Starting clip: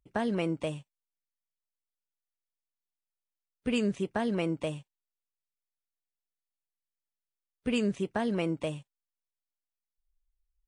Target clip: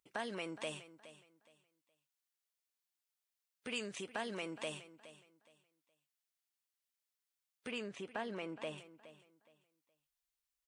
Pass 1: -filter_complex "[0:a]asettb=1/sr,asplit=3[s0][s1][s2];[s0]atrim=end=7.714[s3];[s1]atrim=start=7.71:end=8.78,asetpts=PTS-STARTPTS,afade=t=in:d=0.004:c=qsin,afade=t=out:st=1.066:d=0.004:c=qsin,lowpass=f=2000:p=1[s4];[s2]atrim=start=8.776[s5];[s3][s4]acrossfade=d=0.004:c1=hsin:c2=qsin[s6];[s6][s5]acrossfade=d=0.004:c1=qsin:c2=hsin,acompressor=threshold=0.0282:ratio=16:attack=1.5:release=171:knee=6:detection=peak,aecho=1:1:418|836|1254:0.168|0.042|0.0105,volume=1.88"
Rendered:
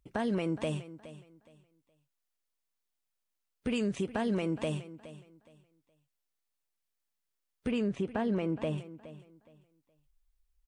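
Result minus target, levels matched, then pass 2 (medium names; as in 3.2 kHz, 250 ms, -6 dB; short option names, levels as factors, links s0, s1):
1 kHz band -4.5 dB
-filter_complex "[0:a]asettb=1/sr,asplit=3[s0][s1][s2];[s0]atrim=end=7.714[s3];[s1]atrim=start=7.71:end=8.78,asetpts=PTS-STARTPTS,afade=t=in:d=0.004:c=qsin,afade=t=out:st=1.066:d=0.004:c=qsin,lowpass=f=2000:p=1[s4];[s2]atrim=start=8.776[s5];[s3][s4]acrossfade=d=0.004:c1=hsin:c2=qsin[s6];[s6][s5]acrossfade=d=0.004:c1=qsin:c2=hsin,acompressor=threshold=0.0282:ratio=16:attack=1.5:release=171:knee=6:detection=peak,highpass=f=1400:p=1,aecho=1:1:418|836|1254:0.168|0.042|0.0105,volume=1.88"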